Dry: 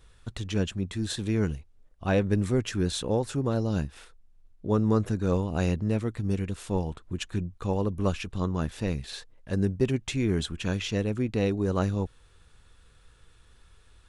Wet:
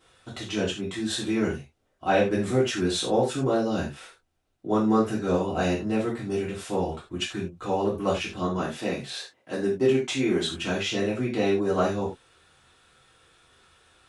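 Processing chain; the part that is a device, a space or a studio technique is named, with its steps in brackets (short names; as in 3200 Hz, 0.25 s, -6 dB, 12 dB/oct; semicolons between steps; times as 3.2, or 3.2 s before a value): 8.57–10.49 HPF 150 Hz 12 dB/oct; high shelf 10000 Hz -5 dB; non-linear reverb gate 0.12 s falling, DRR -7.5 dB; filter by subtraction (in parallel: LPF 480 Hz 12 dB/oct + phase invert); on the sum: gain -3 dB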